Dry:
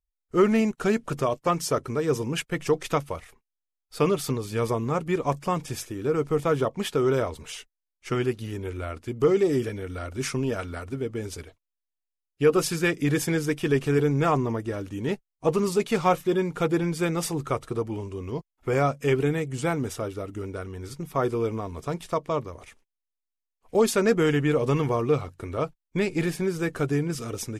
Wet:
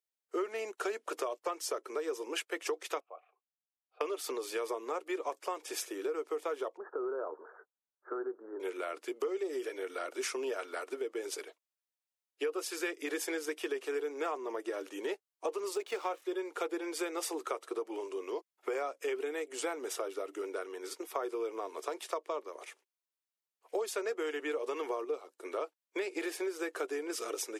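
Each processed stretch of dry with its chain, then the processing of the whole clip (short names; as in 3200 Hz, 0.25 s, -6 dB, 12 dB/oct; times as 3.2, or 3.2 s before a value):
3–4.01 vowel filter a + air absorption 480 m
6.77–8.6 steep low-pass 1600 Hz 96 dB/oct + compressor 2.5:1, threshold -32 dBFS
15.75–16.22 median filter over 3 samples + backlash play -45 dBFS
25.04–25.45 bell 2000 Hz -6 dB 1.8 oct + three-band expander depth 70%
whole clip: steep high-pass 340 Hz 48 dB/oct; compressor 6:1, threshold -33 dBFS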